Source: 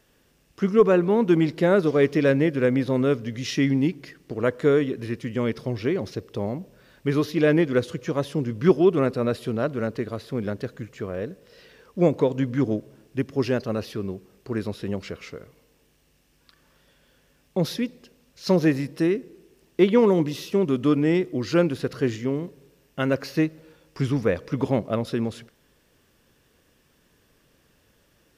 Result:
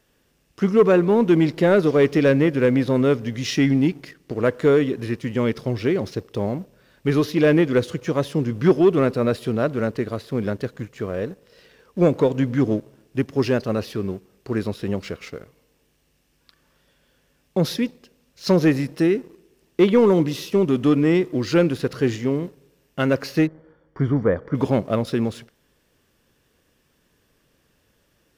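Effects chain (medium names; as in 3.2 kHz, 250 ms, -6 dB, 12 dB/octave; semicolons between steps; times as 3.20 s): waveshaping leveller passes 1; 23.47–24.55 s: Savitzky-Golay filter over 41 samples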